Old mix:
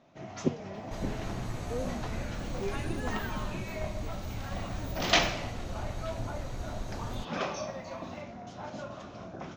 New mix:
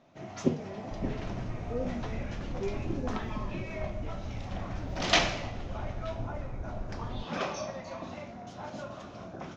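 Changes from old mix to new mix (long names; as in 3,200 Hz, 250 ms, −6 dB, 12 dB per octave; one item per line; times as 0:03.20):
speech: send +11.5 dB
second sound: add moving average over 30 samples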